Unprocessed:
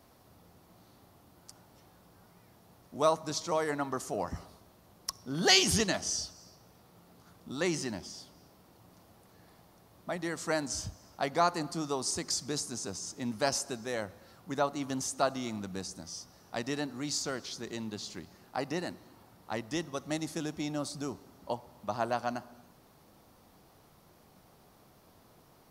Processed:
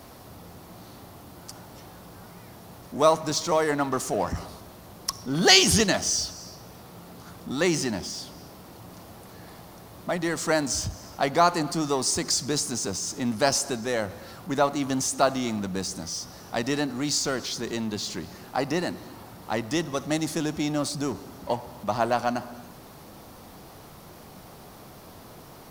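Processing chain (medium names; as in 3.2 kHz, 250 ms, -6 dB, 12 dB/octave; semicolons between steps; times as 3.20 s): companding laws mixed up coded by mu; trim +6.5 dB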